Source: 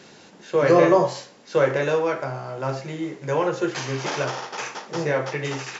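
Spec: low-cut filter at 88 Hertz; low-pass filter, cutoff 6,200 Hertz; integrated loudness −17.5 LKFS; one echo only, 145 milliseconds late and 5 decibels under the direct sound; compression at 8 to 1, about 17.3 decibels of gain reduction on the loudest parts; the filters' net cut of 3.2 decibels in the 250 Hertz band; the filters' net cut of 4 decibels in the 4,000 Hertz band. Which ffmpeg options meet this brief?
ffmpeg -i in.wav -af "highpass=88,lowpass=6200,equalizer=frequency=250:width_type=o:gain=-5.5,equalizer=frequency=4000:width_type=o:gain=-4.5,acompressor=threshold=-31dB:ratio=8,aecho=1:1:145:0.562,volume=17dB" out.wav

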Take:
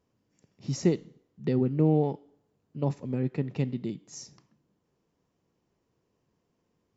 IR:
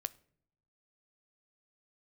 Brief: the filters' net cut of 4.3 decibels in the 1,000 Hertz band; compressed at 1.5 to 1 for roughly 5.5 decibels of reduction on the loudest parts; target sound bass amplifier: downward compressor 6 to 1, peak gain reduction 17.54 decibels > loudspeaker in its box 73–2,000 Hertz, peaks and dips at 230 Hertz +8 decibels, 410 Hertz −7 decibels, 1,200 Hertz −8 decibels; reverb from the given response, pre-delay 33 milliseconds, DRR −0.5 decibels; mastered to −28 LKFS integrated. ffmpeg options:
-filter_complex "[0:a]equalizer=frequency=1000:width_type=o:gain=-5,acompressor=threshold=-33dB:ratio=1.5,asplit=2[link_01][link_02];[1:a]atrim=start_sample=2205,adelay=33[link_03];[link_02][link_03]afir=irnorm=-1:irlink=0,volume=1.5dB[link_04];[link_01][link_04]amix=inputs=2:normalize=0,acompressor=threshold=-38dB:ratio=6,highpass=frequency=73:width=0.5412,highpass=frequency=73:width=1.3066,equalizer=frequency=230:width_type=q:width=4:gain=8,equalizer=frequency=410:width_type=q:width=4:gain=-7,equalizer=frequency=1200:width_type=q:width=4:gain=-8,lowpass=frequency=2000:width=0.5412,lowpass=frequency=2000:width=1.3066,volume=14dB"

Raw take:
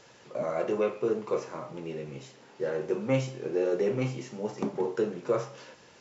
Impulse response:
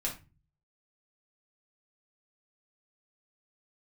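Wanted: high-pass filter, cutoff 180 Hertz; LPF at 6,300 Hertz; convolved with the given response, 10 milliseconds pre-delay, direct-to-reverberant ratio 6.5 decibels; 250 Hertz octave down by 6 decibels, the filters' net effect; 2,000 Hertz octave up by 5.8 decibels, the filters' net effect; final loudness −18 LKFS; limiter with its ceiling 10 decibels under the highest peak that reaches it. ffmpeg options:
-filter_complex "[0:a]highpass=180,lowpass=6300,equalizer=frequency=250:width_type=o:gain=-8,equalizer=frequency=2000:width_type=o:gain=7.5,alimiter=level_in=2.5dB:limit=-24dB:level=0:latency=1,volume=-2.5dB,asplit=2[link_01][link_02];[1:a]atrim=start_sample=2205,adelay=10[link_03];[link_02][link_03]afir=irnorm=-1:irlink=0,volume=-9.5dB[link_04];[link_01][link_04]amix=inputs=2:normalize=0,volume=19dB"

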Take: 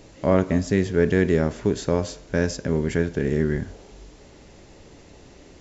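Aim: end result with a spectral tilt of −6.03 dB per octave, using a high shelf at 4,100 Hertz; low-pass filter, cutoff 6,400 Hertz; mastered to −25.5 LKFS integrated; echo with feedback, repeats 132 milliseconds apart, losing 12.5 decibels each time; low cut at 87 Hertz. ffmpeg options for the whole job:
ffmpeg -i in.wav -af "highpass=87,lowpass=6400,highshelf=frequency=4100:gain=-6,aecho=1:1:132|264|396:0.237|0.0569|0.0137,volume=-2.5dB" out.wav

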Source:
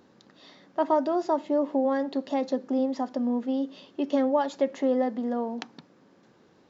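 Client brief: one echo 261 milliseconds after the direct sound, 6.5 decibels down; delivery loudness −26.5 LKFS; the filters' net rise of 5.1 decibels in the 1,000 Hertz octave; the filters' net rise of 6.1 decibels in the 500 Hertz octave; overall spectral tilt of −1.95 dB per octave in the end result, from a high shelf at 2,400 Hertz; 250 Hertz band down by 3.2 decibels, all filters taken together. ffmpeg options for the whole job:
ffmpeg -i in.wav -af "equalizer=frequency=250:width_type=o:gain=-5.5,equalizer=frequency=500:width_type=o:gain=6.5,equalizer=frequency=1000:width_type=o:gain=3,highshelf=frequency=2400:gain=8.5,aecho=1:1:261:0.473,volume=-3.5dB" out.wav

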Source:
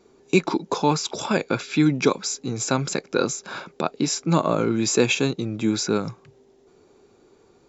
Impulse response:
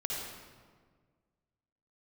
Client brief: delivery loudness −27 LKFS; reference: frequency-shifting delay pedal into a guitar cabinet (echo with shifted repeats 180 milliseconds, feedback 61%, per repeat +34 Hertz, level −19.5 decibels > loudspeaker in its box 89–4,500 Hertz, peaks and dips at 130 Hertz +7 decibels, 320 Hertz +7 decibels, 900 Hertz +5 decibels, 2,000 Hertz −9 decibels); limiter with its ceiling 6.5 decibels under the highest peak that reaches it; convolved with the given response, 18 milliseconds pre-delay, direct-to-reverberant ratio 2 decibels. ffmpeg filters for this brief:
-filter_complex "[0:a]alimiter=limit=-11dB:level=0:latency=1,asplit=2[link_01][link_02];[1:a]atrim=start_sample=2205,adelay=18[link_03];[link_02][link_03]afir=irnorm=-1:irlink=0,volume=-5.5dB[link_04];[link_01][link_04]amix=inputs=2:normalize=0,asplit=6[link_05][link_06][link_07][link_08][link_09][link_10];[link_06]adelay=180,afreqshift=34,volume=-19.5dB[link_11];[link_07]adelay=360,afreqshift=68,volume=-23.8dB[link_12];[link_08]adelay=540,afreqshift=102,volume=-28.1dB[link_13];[link_09]adelay=720,afreqshift=136,volume=-32.4dB[link_14];[link_10]adelay=900,afreqshift=170,volume=-36.7dB[link_15];[link_05][link_11][link_12][link_13][link_14][link_15]amix=inputs=6:normalize=0,highpass=89,equalizer=frequency=130:width_type=q:width=4:gain=7,equalizer=frequency=320:width_type=q:width=4:gain=7,equalizer=frequency=900:width_type=q:width=4:gain=5,equalizer=frequency=2000:width_type=q:width=4:gain=-9,lowpass=frequency=4500:width=0.5412,lowpass=frequency=4500:width=1.3066,volume=-6.5dB"

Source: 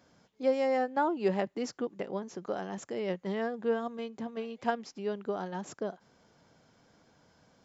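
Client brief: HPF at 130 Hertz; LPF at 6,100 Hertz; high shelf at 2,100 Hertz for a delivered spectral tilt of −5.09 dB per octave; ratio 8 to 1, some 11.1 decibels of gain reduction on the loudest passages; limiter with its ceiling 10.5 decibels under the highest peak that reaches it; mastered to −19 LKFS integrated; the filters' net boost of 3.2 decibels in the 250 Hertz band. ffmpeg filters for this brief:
ffmpeg -i in.wav -af "highpass=130,lowpass=6100,equalizer=frequency=250:width_type=o:gain=4.5,highshelf=frequency=2100:gain=-8.5,acompressor=threshold=-33dB:ratio=8,volume=24dB,alimiter=limit=-9.5dB:level=0:latency=1" out.wav

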